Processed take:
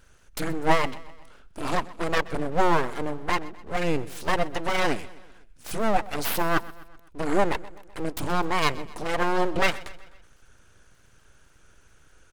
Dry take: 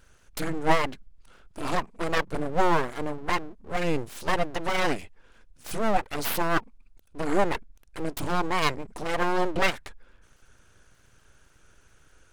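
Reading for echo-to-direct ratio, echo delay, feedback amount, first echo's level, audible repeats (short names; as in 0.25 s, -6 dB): -18.0 dB, 0.127 s, 53%, -19.5 dB, 3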